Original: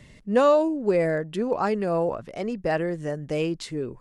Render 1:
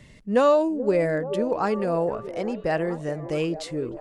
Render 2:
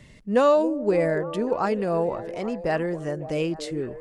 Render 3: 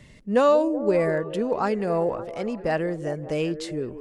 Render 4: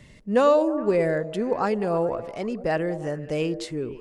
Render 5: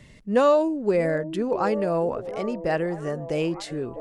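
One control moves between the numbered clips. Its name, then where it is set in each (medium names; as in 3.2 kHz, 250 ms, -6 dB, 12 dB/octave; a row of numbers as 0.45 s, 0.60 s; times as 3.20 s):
repeats whose band climbs or falls, time: 430 ms, 278 ms, 189 ms, 105 ms, 651 ms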